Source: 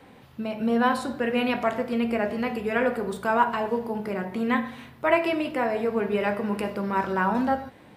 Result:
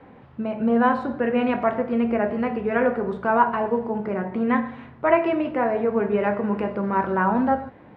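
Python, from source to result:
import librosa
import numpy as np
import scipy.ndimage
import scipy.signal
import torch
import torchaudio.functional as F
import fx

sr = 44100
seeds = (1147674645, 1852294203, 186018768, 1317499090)

y = scipy.signal.sosfilt(scipy.signal.butter(2, 1700.0, 'lowpass', fs=sr, output='sos'), x)
y = y * 10.0 ** (3.5 / 20.0)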